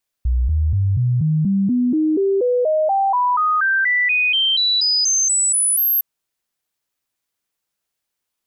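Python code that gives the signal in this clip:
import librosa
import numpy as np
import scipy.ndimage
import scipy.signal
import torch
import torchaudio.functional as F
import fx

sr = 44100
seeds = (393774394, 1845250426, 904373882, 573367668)

y = fx.stepped_sweep(sr, from_hz=61.7, direction='up', per_octave=3, tones=24, dwell_s=0.24, gap_s=0.0, level_db=-14.0)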